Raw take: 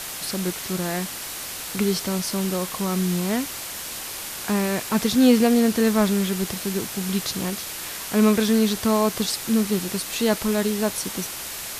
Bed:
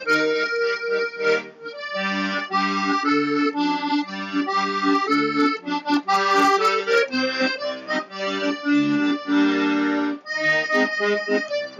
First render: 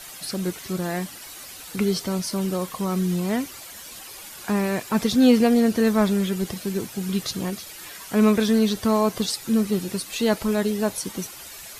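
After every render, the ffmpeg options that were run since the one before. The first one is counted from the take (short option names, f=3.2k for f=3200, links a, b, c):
-af "afftdn=nr=11:nf=-34"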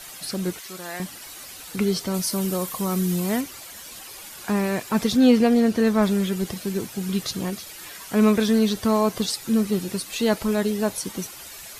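-filter_complex "[0:a]asettb=1/sr,asplit=3[a][b][c];[a]atrim=end=0.604[d];[b]atrim=start=0.6:end=1,asetpts=PTS-STARTPTS,afade=t=in:d=0.004:c=qsin,afade=t=out:st=0.396:d=0.004:c=qsin,highpass=f=1.1k:p=1[e];[c]atrim=start=0.996[f];[d][e]acrossfade=d=0.004:c1=hsin:c2=qsin[g];[g][f]acrossfade=d=0.004:c1=qsin:c2=hsin,asettb=1/sr,asplit=3[h][i][j];[h]atrim=end=2.144[k];[i]atrim=start=2.14:end=3.41,asetpts=PTS-STARTPTS,afade=t=in:d=0.004:c=qsin,afade=t=out:st=1.266:d=0.004:c=qsin,highshelf=f=8.5k:g=11[l];[j]atrim=start=3.406[m];[k][l]acrossfade=d=0.004:c1=hsin:c2=qsin[n];[n][m]acrossfade=d=0.004:c1=qsin:c2=hsin,asettb=1/sr,asplit=3[o][p][q];[o]atrim=end=5.174[r];[p]atrim=start=5.17:end=6.03,asetpts=PTS-STARTPTS,afade=t=in:d=0.004:c=qsin,afade=t=out:st=0.856:d=0.004:c=qsin,highshelf=f=7.3k:g=-6.5[s];[q]atrim=start=6.026[t];[r][s]acrossfade=d=0.004:c1=hsin:c2=qsin[u];[u][t]acrossfade=d=0.004:c1=qsin:c2=hsin"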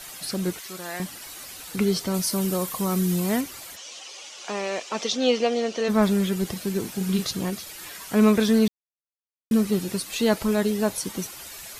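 -filter_complex "[0:a]asplit=3[a][b][c];[a]afade=t=out:st=3.75:d=0.02[d];[b]highpass=480,equalizer=f=540:t=q:w=4:g=4,equalizer=f=970:t=q:w=4:g=-3,equalizer=f=1.6k:t=q:w=4:g=-7,equalizer=f=3k:t=q:w=4:g=6,equalizer=f=6k:t=q:w=4:g=6,lowpass=f=7.1k:w=0.5412,lowpass=f=7.1k:w=1.3066,afade=t=in:st=3.75:d=0.02,afade=t=out:st=5.88:d=0.02[e];[c]afade=t=in:st=5.88:d=0.02[f];[d][e][f]amix=inputs=3:normalize=0,asettb=1/sr,asplit=3[g][h][i];[g]atrim=end=6.814[j];[h]atrim=start=6.81:end=7.25,asetpts=PTS-STARTPTS,afade=t=in:d=0.004:c=qsin,afade=t=out:st=0.436:d=0.004:c=qsin,asplit=2[k][l];[l]adelay=37,volume=-7dB[m];[k][m]amix=inputs=2:normalize=0,atrim=end_sample=19404[n];[i]atrim=start=7.246[o];[j][n]acrossfade=d=0.004:c1=hsin:c2=qsin[p];[p][o]acrossfade=d=0.004:c1=qsin:c2=hsin,asplit=3[q][r][s];[q]atrim=end=8.68,asetpts=PTS-STARTPTS,afade=t=out:st=8.676:d=0.004:c=hsin[t];[r]atrim=start=8.68:end=9.51,asetpts=PTS-STARTPTS,volume=0[u];[s]atrim=start=9.51,asetpts=PTS-STARTPTS,afade=t=in:d=0.004:c=hsin[v];[t][u][v]concat=n=3:v=0:a=1"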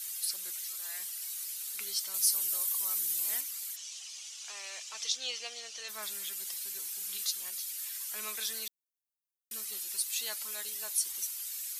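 -af "highpass=f=890:p=1,aderivative"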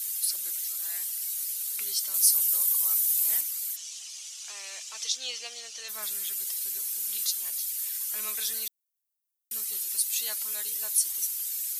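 -af "crystalizer=i=1:c=0"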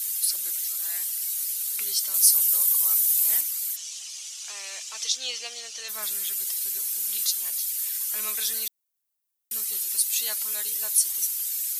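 -af "volume=3.5dB"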